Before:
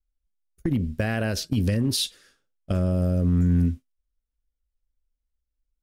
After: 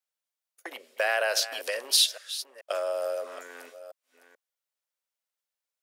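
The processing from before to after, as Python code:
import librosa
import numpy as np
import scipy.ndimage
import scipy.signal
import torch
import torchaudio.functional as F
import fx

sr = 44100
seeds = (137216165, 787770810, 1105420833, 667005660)

y = fx.reverse_delay(x, sr, ms=435, wet_db=-13.5)
y = scipy.signal.sosfilt(scipy.signal.butter(6, 550.0, 'highpass', fs=sr, output='sos'), y)
y = y * librosa.db_to_amplitude(5.0)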